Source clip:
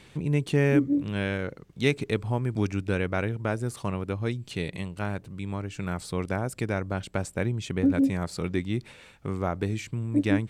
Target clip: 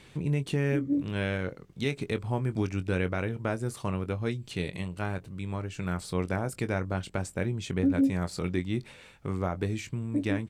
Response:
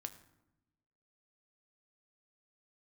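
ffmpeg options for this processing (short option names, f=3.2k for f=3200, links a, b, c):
-filter_complex "[0:a]alimiter=limit=-16.5dB:level=0:latency=1:release=167,asplit=2[a][b];[b]adelay=22,volume=-11.5dB[c];[a][c]amix=inputs=2:normalize=0,volume=-1.5dB"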